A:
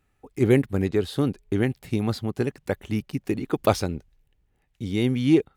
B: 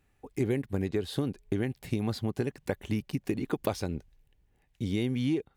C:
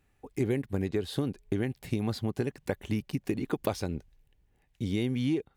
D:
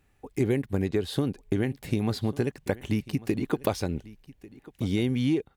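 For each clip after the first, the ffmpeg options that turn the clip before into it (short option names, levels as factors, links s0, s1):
-af "acompressor=threshold=0.0501:ratio=6,bandreject=f=1300:w=11"
-af anull
-af "aecho=1:1:1144:0.1,volume=1.5"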